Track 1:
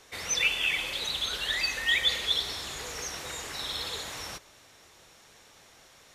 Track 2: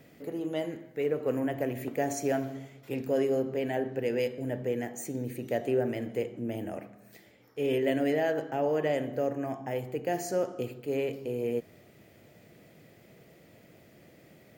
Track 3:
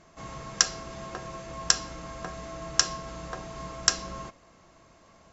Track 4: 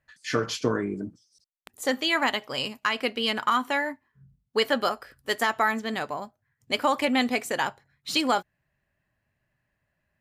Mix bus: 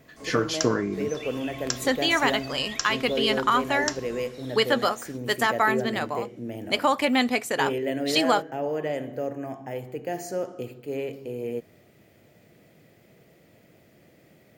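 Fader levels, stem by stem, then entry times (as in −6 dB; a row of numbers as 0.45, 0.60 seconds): −15.0, −0.5, −7.5, +1.5 decibels; 0.80, 0.00, 0.00, 0.00 seconds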